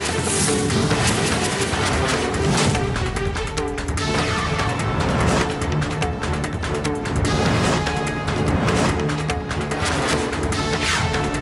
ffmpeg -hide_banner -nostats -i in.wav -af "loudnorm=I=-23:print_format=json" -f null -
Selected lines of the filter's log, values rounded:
"input_i" : "-20.9",
"input_tp" : "-7.3",
"input_lra" : "1.0",
"input_thresh" : "-30.9",